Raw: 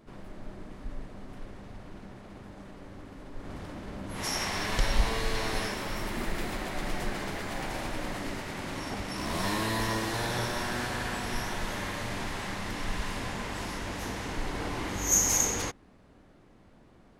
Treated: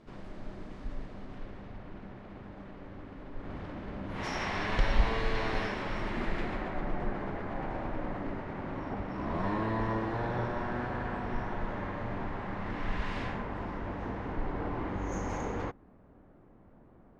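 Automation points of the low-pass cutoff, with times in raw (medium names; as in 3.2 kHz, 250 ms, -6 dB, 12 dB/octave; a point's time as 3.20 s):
0.87 s 5.9 kHz
1.83 s 2.8 kHz
6.36 s 2.8 kHz
6.88 s 1.3 kHz
12.49 s 1.3 kHz
13.21 s 3.2 kHz
13.45 s 1.3 kHz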